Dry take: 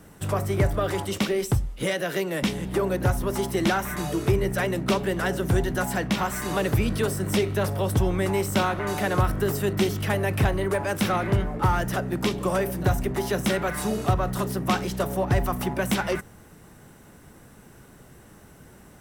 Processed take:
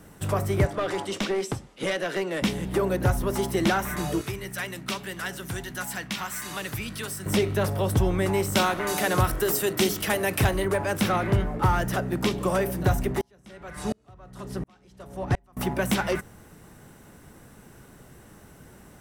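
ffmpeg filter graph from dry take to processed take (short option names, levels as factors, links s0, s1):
-filter_complex "[0:a]asettb=1/sr,asplit=3[s0][s1][s2];[s0]atrim=end=0.654[s3];[s1]atrim=start=0.65:end=2.42,asetpts=PTS-STARTPTS,afade=t=in:d=0.004:c=qsin,afade=t=out:st=1.766:d=0.004:c=qsin,highpass=210,lowpass=7700,aeval=exprs='clip(val(0),-1,0.0562)':c=same[s4];[s2]atrim=start=2.416[s5];[s3][s4]acrossfade=d=0.004:c1=hsin:c2=qsin[s6];[s6][s5]acrossfade=d=0.004:c1=qsin:c2=hsin,asettb=1/sr,asplit=3[s7][s8][s9];[s7]atrim=end=4.214[s10];[s8]atrim=start=4.21:end=7.26,asetpts=PTS-STARTPTS,afade=t=in:d=0.004:c=qsin,afade=t=out:st=3.046:d=0.004:c=qsin,highpass=f=310:p=1,equalizer=f=490:t=o:w=2.2:g=-12.5[s11];[s9]atrim=start=7.256[s12];[s10][s11]acrossfade=d=0.004:c1=hsin:c2=qsin[s13];[s13][s12]acrossfade=d=0.004:c1=qsin:c2=hsin,asettb=1/sr,asplit=3[s14][s15][s16];[s14]atrim=end=8.554[s17];[s15]atrim=start=8.55:end=10.65,asetpts=PTS-STARTPTS,afade=t=in:d=0.004:c=qsin,afade=t=out:st=2.096:d=0.004:c=qsin,highshelf=f=3500:g=9,bandreject=f=50:t=h:w=6,bandreject=f=100:t=h:w=6,bandreject=f=150:t=h:w=6,bandreject=f=200:t=h:w=6,bandreject=f=250:t=h:w=6[s18];[s16]atrim=start=10.646[s19];[s17][s18]acrossfade=d=0.004:c1=hsin:c2=qsin[s20];[s20][s19]acrossfade=d=0.004:c1=qsin:c2=hsin,asettb=1/sr,asplit=3[s21][s22][s23];[s21]atrim=end=13.214[s24];[s22]atrim=start=13.21:end=15.57,asetpts=PTS-STARTPTS,afade=t=in:d=0.004:c=qsin,afade=t=out:st=2.356:d=0.004:c=qsin,lowpass=9400,aeval=exprs='val(0)+0.0126*(sin(2*PI*50*n/s)+sin(2*PI*2*50*n/s)/2+sin(2*PI*3*50*n/s)/3+sin(2*PI*4*50*n/s)/4+sin(2*PI*5*50*n/s)/5)':c=same,aeval=exprs='val(0)*pow(10,-39*if(lt(mod(-1.4*n/s,1),2*abs(-1.4)/1000),1-mod(-1.4*n/s,1)/(2*abs(-1.4)/1000),(mod(-1.4*n/s,1)-2*abs(-1.4)/1000)/(1-2*abs(-1.4)/1000))/20)':c=same[s25];[s23]atrim=start=15.566[s26];[s24][s25]acrossfade=d=0.004:c1=hsin:c2=qsin[s27];[s27][s26]acrossfade=d=0.004:c1=qsin:c2=hsin"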